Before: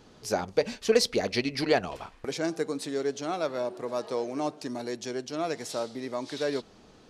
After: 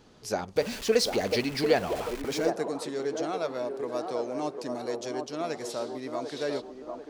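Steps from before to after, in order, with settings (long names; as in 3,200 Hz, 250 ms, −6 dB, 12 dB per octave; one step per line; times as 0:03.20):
0:00.56–0:02.50: converter with a step at zero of −33.5 dBFS
delay with a band-pass on its return 745 ms, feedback 47%, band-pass 590 Hz, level −4 dB
level −2 dB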